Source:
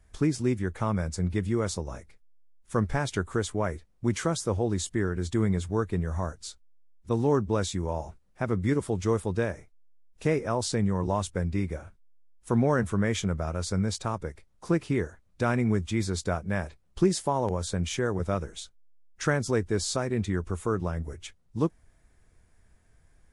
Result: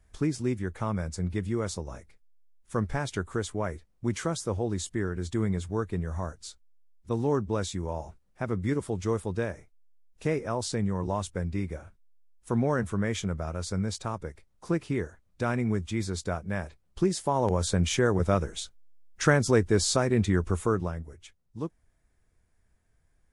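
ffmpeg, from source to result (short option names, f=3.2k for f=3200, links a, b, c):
-af "volume=4dB,afade=t=in:st=17.17:d=0.44:silence=0.473151,afade=t=out:st=20.56:d=0.51:silence=0.251189"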